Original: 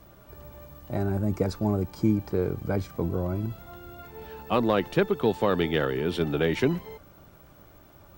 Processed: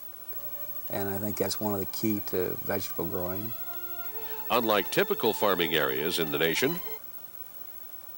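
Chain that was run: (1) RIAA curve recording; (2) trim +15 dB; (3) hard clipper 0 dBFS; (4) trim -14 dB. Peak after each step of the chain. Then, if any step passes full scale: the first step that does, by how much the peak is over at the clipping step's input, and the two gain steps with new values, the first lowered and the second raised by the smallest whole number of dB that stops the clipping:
-9.0 dBFS, +6.0 dBFS, 0.0 dBFS, -14.0 dBFS; step 2, 6.0 dB; step 2 +9 dB, step 4 -8 dB

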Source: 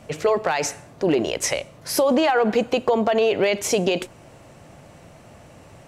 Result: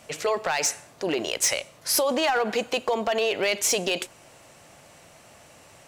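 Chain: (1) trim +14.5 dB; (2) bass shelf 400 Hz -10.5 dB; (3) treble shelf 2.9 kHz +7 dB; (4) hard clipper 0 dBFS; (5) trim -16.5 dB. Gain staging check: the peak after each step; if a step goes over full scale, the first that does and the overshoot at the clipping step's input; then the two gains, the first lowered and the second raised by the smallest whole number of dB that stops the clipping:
+5.5 dBFS, +4.5 dBFS, +9.5 dBFS, 0.0 dBFS, -16.5 dBFS; step 1, 9.5 dB; step 1 +4.5 dB, step 5 -6.5 dB

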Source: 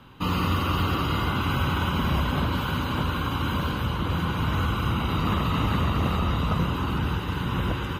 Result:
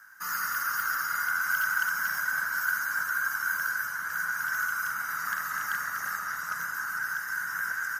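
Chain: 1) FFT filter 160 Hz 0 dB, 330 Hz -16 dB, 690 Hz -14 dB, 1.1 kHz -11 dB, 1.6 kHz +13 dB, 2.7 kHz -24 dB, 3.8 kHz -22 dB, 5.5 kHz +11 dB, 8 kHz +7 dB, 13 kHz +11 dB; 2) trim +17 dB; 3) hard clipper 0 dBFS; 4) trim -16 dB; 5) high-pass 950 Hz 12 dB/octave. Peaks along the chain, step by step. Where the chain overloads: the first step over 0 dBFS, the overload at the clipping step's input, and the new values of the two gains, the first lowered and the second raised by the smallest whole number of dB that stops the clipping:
-12.0 dBFS, +5.0 dBFS, 0.0 dBFS, -16.0 dBFS, -15.0 dBFS; step 2, 5.0 dB; step 2 +12 dB, step 4 -11 dB

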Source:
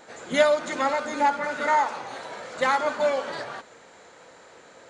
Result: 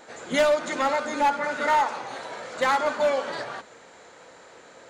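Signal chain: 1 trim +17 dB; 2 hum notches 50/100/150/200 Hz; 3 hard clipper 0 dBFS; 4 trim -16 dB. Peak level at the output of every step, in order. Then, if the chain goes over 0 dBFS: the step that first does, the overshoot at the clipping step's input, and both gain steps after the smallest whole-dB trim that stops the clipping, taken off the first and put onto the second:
+9.0 dBFS, +9.0 dBFS, 0.0 dBFS, -16.0 dBFS; step 1, 9.0 dB; step 1 +8 dB, step 4 -7 dB

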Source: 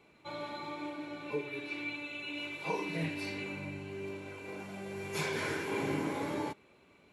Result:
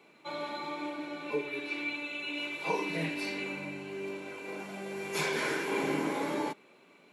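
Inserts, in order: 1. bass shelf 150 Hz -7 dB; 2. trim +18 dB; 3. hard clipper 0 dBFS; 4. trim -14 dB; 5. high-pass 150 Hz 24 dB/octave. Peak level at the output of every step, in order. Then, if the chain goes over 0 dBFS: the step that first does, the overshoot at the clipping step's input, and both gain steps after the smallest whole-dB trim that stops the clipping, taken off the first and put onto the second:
-22.0 dBFS, -4.0 dBFS, -4.0 dBFS, -18.0 dBFS, -19.0 dBFS; nothing clips

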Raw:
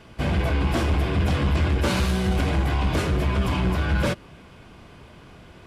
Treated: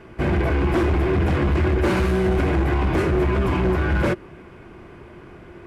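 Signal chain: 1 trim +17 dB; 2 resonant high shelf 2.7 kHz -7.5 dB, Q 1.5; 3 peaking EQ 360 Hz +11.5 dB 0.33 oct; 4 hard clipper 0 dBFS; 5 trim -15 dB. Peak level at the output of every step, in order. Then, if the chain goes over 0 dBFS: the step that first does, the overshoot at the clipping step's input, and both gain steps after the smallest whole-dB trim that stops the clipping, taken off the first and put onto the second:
+4.0 dBFS, +4.5 dBFS, +7.5 dBFS, 0.0 dBFS, -15.0 dBFS; step 1, 7.5 dB; step 1 +9 dB, step 5 -7 dB

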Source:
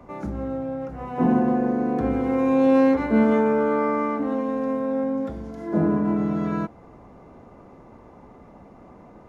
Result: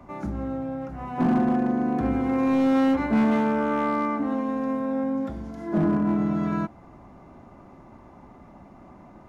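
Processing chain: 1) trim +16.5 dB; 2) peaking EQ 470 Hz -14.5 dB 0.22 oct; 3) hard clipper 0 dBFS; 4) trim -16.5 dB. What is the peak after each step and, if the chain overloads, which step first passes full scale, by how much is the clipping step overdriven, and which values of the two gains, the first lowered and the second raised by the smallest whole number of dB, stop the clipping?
+9.0 dBFS, +7.0 dBFS, 0.0 dBFS, -16.5 dBFS; step 1, 7.0 dB; step 1 +9.5 dB, step 4 -9.5 dB

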